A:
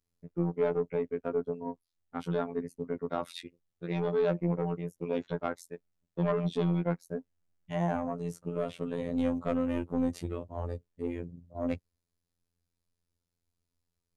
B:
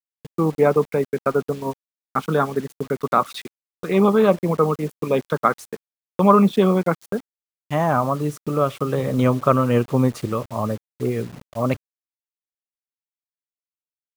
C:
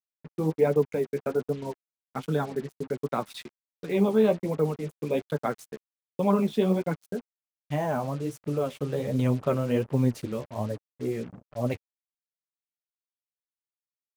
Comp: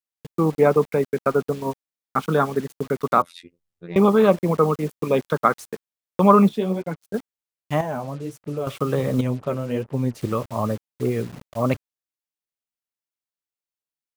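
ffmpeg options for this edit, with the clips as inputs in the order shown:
-filter_complex "[2:a]asplit=3[s0][s1][s2];[1:a]asplit=5[s3][s4][s5][s6][s7];[s3]atrim=end=3.222[s8];[0:a]atrim=start=3.218:end=3.962[s9];[s4]atrim=start=3.958:end=6.492[s10];[s0]atrim=start=6.488:end=7.142[s11];[s5]atrim=start=7.138:end=7.812[s12];[s1]atrim=start=7.808:end=8.672[s13];[s6]atrim=start=8.668:end=9.212[s14];[s2]atrim=start=9.208:end=10.212[s15];[s7]atrim=start=10.208[s16];[s8][s9]acrossfade=d=0.004:c1=hsin:c2=hsin[s17];[s17][s10]acrossfade=d=0.004:c1=hsin:c2=hsin[s18];[s18][s11]acrossfade=d=0.004:c1=hsin:c2=hsin[s19];[s19][s12]acrossfade=d=0.004:c1=hsin:c2=hsin[s20];[s20][s13]acrossfade=d=0.004:c1=hsin:c2=hsin[s21];[s21][s14]acrossfade=d=0.004:c1=hsin:c2=hsin[s22];[s22][s15]acrossfade=d=0.004:c1=hsin:c2=hsin[s23];[s23][s16]acrossfade=d=0.004:c1=hsin:c2=hsin"

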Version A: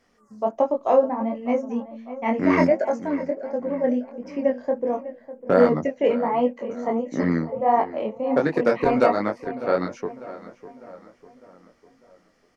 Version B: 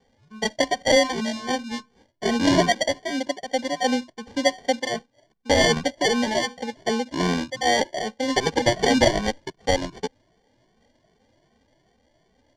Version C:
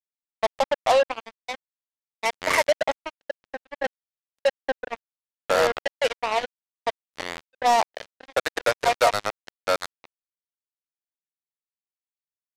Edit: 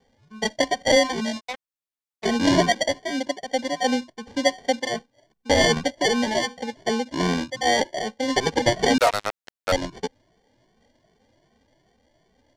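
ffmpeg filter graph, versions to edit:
-filter_complex "[2:a]asplit=2[s0][s1];[1:a]asplit=3[s2][s3][s4];[s2]atrim=end=1.41[s5];[s0]atrim=start=1.37:end=2.26[s6];[s3]atrim=start=2.22:end=8.982[s7];[s1]atrim=start=8.978:end=9.722[s8];[s4]atrim=start=9.718[s9];[s5][s6]acrossfade=d=0.04:c1=tri:c2=tri[s10];[s10][s7]acrossfade=d=0.04:c1=tri:c2=tri[s11];[s11][s8]acrossfade=d=0.004:c1=hsin:c2=hsin[s12];[s12][s9]acrossfade=d=0.004:c1=hsin:c2=hsin"

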